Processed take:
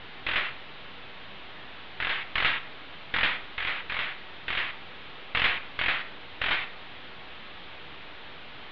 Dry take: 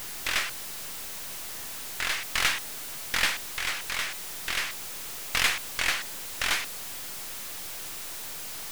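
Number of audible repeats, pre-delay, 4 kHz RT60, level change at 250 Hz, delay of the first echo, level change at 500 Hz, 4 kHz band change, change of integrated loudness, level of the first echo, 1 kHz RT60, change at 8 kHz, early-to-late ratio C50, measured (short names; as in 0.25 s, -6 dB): none, 5 ms, 0.35 s, +1.0 dB, none, +0.5 dB, -1.5 dB, +0.5 dB, none, 0.55 s, under -40 dB, 13.5 dB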